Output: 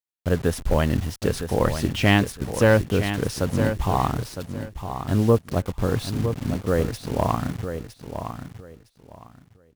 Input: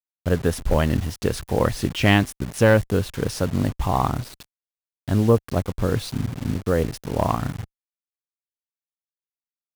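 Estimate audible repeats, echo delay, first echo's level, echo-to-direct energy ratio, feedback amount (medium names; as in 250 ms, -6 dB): 2, 960 ms, -9.0 dB, -9.0 dB, 21%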